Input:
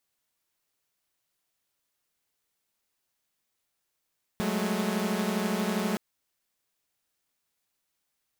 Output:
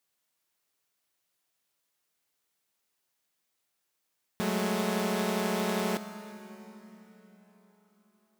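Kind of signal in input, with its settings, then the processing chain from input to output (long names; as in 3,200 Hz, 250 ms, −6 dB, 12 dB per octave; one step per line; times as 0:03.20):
held notes F#3/G#3/A3 saw, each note −28.5 dBFS 1.57 s
low-shelf EQ 79 Hz −11.5 dB
dense smooth reverb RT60 4.4 s, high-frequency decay 0.75×, DRR 11 dB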